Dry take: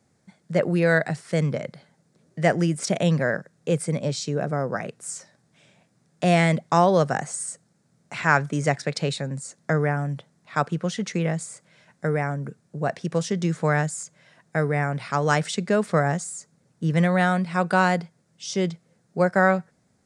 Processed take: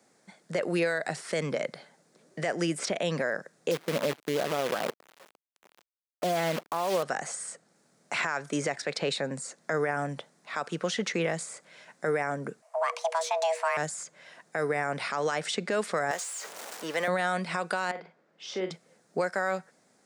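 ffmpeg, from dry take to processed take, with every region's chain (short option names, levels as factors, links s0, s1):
-filter_complex "[0:a]asettb=1/sr,asplit=3[s0][s1][s2];[s0]atrim=end=3.714[s3];[s1]atrim=start=3.71:end=7.03,asetpts=PTS-STARTPTS,afade=t=in:d=0.004:c=qsin,afade=t=out:st=3.316:d=0.004:c=qsin,lowpass=f=1400:w=0.5412,lowpass=f=1400:w=1.3066,acrusher=bits=6:dc=4:mix=0:aa=0.000001[s4];[s2]atrim=start=7.026[s5];[s3][s4]acrossfade=d=0.004:c1=hsin:c2=qsin[s6];[s6][s5]acrossfade=d=0.004:c1=qsin:c2=hsin,asettb=1/sr,asplit=3[s7][s8][s9];[s7]atrim=end=12.624[s10];[s8]atrim=start=12.62:end=13.77,asetpts=PTS-STARTPTS,afade=t=in:d=0.004:c=qsin,afade=t=out:st=1.146:d=0.004:c=qsin,aeval=exprs='if(lt(val(0),0),0.708*val(0),val(0))':c=same,afreqshift=480[s11];[s9]atrim=start=13.766[s12];[s10][s11]acrossfade=d=0.004:c1=hsin:c2=qsin[s13];[s13][s12]acrossfade=d=0.004:c1=qsin:c2=hsin,asettb=1/sr,asplit=3[s14][s15][s16];[s14]atrim=end=16.114[s17];[s15]atrim=start=16.11:end=17.08,asetpts=PTS-STARTPTS,afade=t=in:d=0.004:c=qsin,afade=t=out:st=0.966:d=0.004:c=qsin,aeval=exprs='val(0)+0.5*0.0168*sgn(val(0))':c=same,highpass=510[s18];[s16]atrim=start=17.076[s19];[s17][s18]acrossfade=d=0.004:c1=hsin:c2=qsin[s20];[s20][s19]acrossfade=d=0.004:c1=qsin:c2=hsin,asettb=1/sr,asplit=3[s21][s22][s23];[s21]atrim=end=17.914[s24];[s22]atrim=start=17.91:end=18.71,asetpts=PTS-STARTPTS,afade=t=in:d=0.004:c=qsin,afade=t=out:st=0.796:d=0.004:c=qsin,highpass=230,lowpass=2300,acompressor=threshold=0.0141:ratio=2:attack=3.2:release=140:knee=1:detection=peak,asplit=2[s25][s26];[s26]adelay=43,volume=0.398[s27];[s25][s27]amix=inputs=2:normalize=0,atrim=end_sample=35280[s28];[s23]atrim=start=18.706[s29];[s24][s28]acrossfade=d=0.004:c1=hsin:c2=qsin[s30];[s30][s29]acrossfade=d=0.004:c1=qsin:c2=hsin,highpass=330,acrossover=split=1700|4100[s31][s32][s33];[s31]acompressor=threshold=0.0355:ratio=4[s34];[s32]acompressor=threshold=0.0141:ratio=4[s35];[s33]acompressor=threshold=0.00562:ratio=4[s36];[s34][s35][s36]amix=inputs=3:normalize=0,alimiter=limit=0.0668:level=0:latency=1:release=41,volume=1.78"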